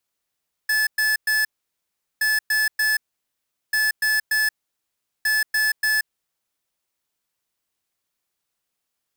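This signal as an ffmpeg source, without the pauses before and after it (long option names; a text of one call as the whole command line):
ffmpeg -f lavfi -i "aevalsrc='0.1*(2*lt(mod(1730*t,1),0.5)-1)*clip(min(mod(mod(t,1.52),0.29),0.18-mod(mod(t,1.52),0.29))/0.005,0,1)*lt(mod(t,1.52),0.87)':duration=6.08:sample_rate=44100" out.wav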